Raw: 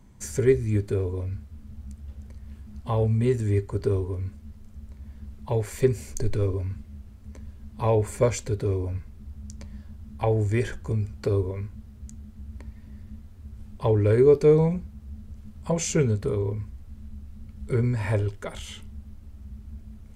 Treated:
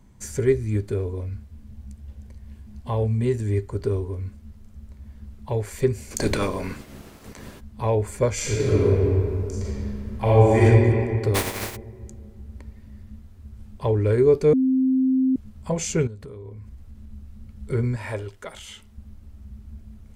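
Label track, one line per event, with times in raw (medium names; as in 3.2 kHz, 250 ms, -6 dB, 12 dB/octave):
1.440000	3.630000	band-stop 1.3 kHz, Q 8.8
6.100000	7.590000	spectral peaks clipped ceiling under each frame's peak by 27 dB
8.330000	10.620000	reverb throw, RT60 2.5 s, DRR -9.5 dB
11.340000	11.750000	spectral contrast reduction exponent 0.32
14.530000	15.360000	bleep 261 Hz -16.5 dBFS
16.070000	17.110000	compression, threshold -36 dBFS
17.960000	18.980000	bass shelf 310 Hz -10 dB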